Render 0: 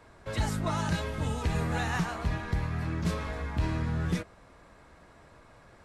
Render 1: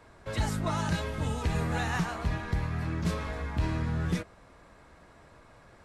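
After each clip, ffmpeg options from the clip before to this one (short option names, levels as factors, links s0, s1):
-af anull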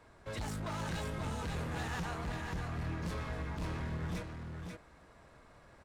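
-filter_complex "[0:a]volume=35.5,asoftclip=hard,volume=0.0282,asplit=2[s0][s1];[s1]aecho=0:1:538:0.531[s2];[s0][s2]amix=inputs=2:normalize=0,volume=0.562"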